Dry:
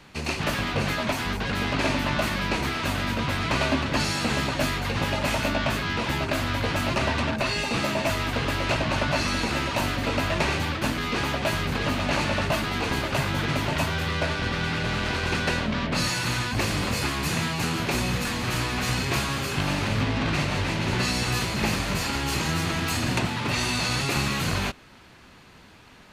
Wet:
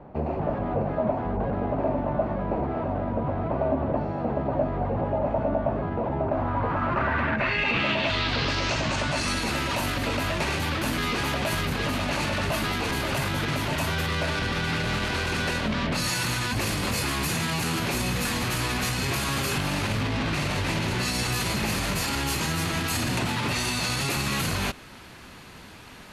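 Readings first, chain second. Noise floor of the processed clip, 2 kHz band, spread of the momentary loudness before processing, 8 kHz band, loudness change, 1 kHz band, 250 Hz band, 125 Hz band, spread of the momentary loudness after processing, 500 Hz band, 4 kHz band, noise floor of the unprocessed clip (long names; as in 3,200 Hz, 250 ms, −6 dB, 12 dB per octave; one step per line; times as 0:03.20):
−45 dBFS, −1.5 dB, 2 LU, +0.5 dB, −0.5 dB, −0.5 dB, −1.0 dB, −1.0 dB, 3 LU, +1.5 dB, −1.5 dB, −50 dBFS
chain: brickwall limiter −23.5 dBFS, peak gain reduction 9.5 dB
low-pass filter sweep 680 Hz → 12,000 Hz, 0:06.18–0:09.49
level +5 dB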